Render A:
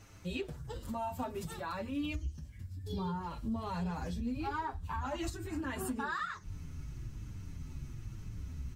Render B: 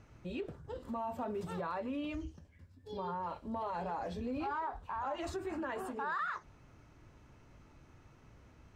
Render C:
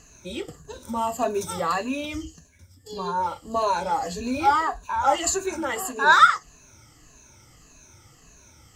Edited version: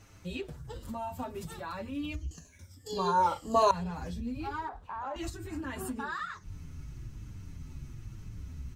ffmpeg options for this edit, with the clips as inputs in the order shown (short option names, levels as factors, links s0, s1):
-filter_complex "[0:a]asplit=3[s0][s1][s2];[s0]atrim=end=2.312[s3];[2:a]atrim=start=2.308:end=3.712[s4];[s1]atrim=start=3.708:end=4.692[s5];[1:a]atrim=start=4.688:end=5.162[s6];[s2]atrim=start=5.158[s7];[s3][s4]acrossfade=d=0.004:c1=hsin:c2=hsin[s8];[s8][s5]acrossfade=d=0.004:c1=hsin:c2=hsin[s9];[s9][s6]acrossfade=d=0.004:c1=hsin:c2=hsin[s10];[s10][s7]acrossfade=d=0.004:c1=hsin:c2=hsin"